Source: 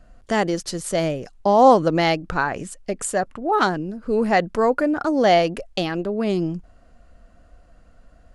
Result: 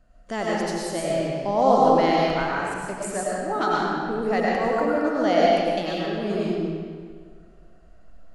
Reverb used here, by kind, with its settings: digital reverb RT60 1.9 s, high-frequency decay 0.8×, pre-delay 65 ms, DRR -5.5 dB; gain -9 dB

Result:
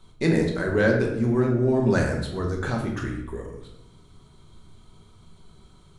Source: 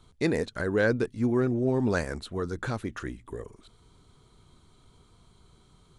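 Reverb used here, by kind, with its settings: shoebox room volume 240 m³, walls mixed, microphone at 1.1 m; gain +1 dB

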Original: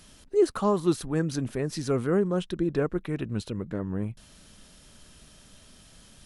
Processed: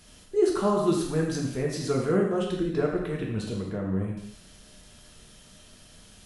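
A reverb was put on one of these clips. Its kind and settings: non-linear reverb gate 0.3 s falling, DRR -2.5 dB; gain -2.5 dB

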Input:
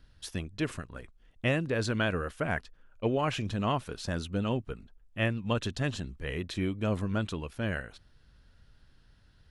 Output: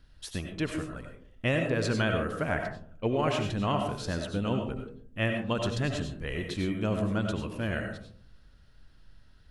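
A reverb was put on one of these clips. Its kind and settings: digital reverb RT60 0.54 s, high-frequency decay 0.3×, pre-delay 55 ms, DRR 3.5 dB

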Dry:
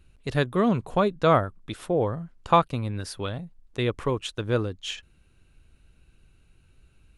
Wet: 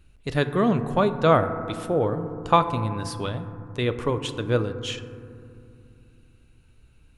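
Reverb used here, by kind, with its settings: FDN reverb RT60 2.5 s, low-frequency decay 1.55×, high-frequency decay 0.25×, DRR 9 dB; gain +1 dB

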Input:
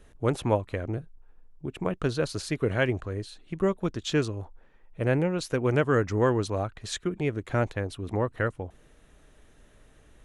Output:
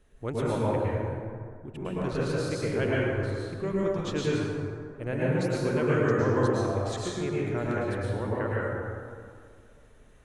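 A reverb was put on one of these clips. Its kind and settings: plate-style reverb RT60 2.1 s, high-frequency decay 0.45×, pre-delay 95 ms, DRR -7 dB; gain -8.5 dB

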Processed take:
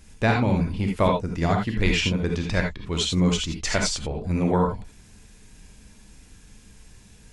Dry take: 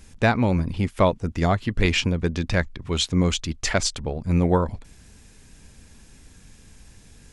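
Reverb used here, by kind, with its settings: non-linear reverb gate 0.1 s rising, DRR 1 dB; gain -3 dB

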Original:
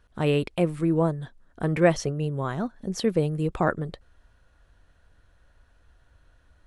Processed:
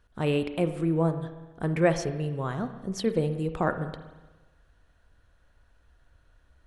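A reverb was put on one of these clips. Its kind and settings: spring tank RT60 1.2 s, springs 31/60 ms, chirp 25 ms, DRR 9 dB; gain -3 dB

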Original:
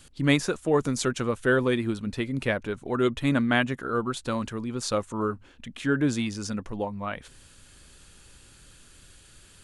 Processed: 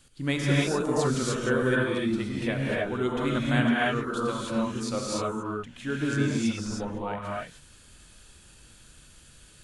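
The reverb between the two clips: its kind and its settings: non-linear reverb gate 0.33 s rising, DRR -5 dB; gain -6.5 dB

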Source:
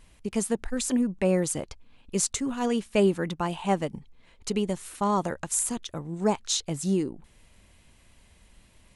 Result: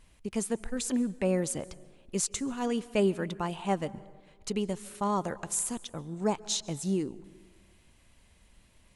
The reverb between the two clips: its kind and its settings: plate-style reverb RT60 1.5 s, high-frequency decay 0.5×, pre-delay 0.12 s, DRR 19.5 dB; gain -4 dB

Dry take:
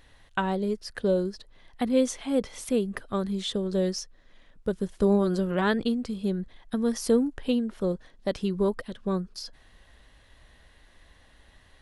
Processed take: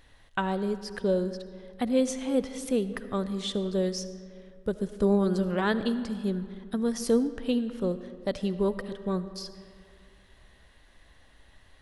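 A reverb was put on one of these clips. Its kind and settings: digital reverb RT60 2.3 s, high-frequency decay 0.55×, pre-delay 35 ms, DRR 12.5 dB; gain -1.5 dB

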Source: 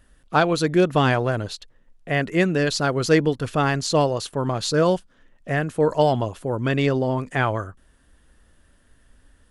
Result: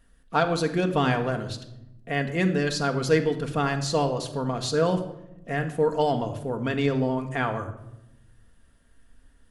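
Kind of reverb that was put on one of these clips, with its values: shoebox room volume 2900 m³, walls furnished, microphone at 1.7 m; gain -5.5 dB

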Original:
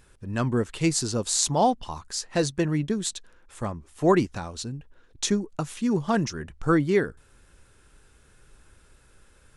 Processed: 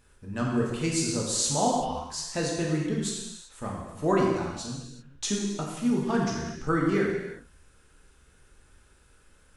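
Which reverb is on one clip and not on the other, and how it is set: non-linear reverb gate 0.41 s falling, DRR -3 dB; gain -6.5 dB

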